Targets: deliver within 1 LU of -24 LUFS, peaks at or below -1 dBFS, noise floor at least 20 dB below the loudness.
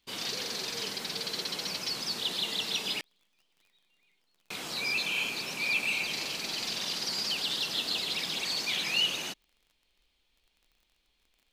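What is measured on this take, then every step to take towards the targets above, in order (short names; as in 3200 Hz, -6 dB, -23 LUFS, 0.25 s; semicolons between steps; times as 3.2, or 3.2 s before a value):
ticks 32/s; loudness -30.5 LUFS; peak -16.5 dBFS; loudness target -24.0 LUFS
-> de-click; gain +6.5 dB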